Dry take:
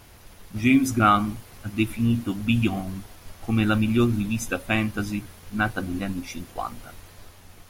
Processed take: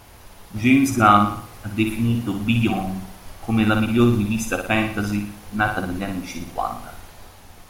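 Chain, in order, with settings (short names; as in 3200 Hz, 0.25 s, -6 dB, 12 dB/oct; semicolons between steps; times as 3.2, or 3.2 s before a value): bell 820 Hz +5 dB 0.86 oct; flutter echo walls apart 10 m, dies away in 0.54 s; gain +2 dB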